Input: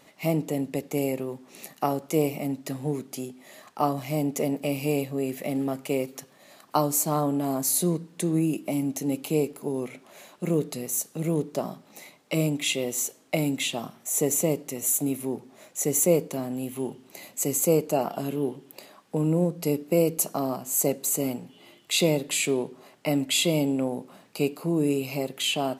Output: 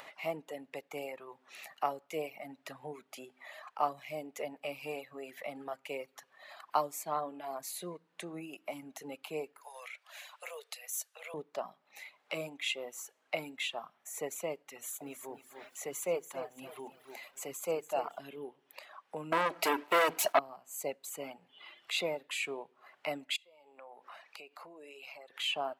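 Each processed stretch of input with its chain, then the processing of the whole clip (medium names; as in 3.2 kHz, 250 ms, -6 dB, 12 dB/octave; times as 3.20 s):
9.61–11.34 s: steep high-pass 450 Hz 72 dB/octave + tilt shelf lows -8 dB, about 1.4 kHz
14.73–18.18 s: hum notches 50/100/150/200/250/300/350 Hz + bit-crushed delay 280 ms, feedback 35%, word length 8-bit, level -8.5 dB
19.32–20.39 s: waveshaping leveller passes 5 + high-pass 250 Hz 6 dB/octave + comb 3.1 ms, depth 38%
23.36–25.39 s: frequency weighting A + compression 4:1, threshold -46 dBFS
whole clip: reverb removal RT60 1.3 s; three-band isolator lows -20 dB, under 590 Hz, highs -15 dB, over 3.4 kHz; upward compressor, threshold -38 dBFS; trim -3 dB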